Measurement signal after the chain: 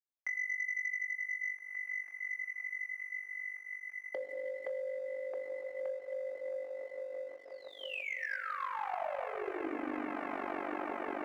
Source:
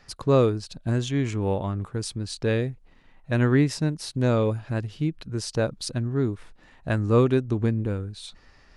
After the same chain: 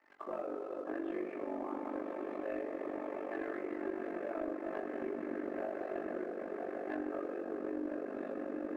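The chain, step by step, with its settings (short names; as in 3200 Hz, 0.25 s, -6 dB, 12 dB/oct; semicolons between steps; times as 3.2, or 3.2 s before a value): mistuned SSB +84 Hz 250–2300 Hz; limiter -19.5 dBFS; swelling echo 0.165 s, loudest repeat 8, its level -14 dB; FDN reverb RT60 3 s, low-frequency decay 1.3×, high-frequency decay 0.4×, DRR 1 dB; chorus 0.29 Hz, depth 6.8 ms; compressor 5:1, threshold -33 dBFS; AM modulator 48 Hz, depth 80%; air absorption 220 m; notch comb 480 Hz; sample leveller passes 1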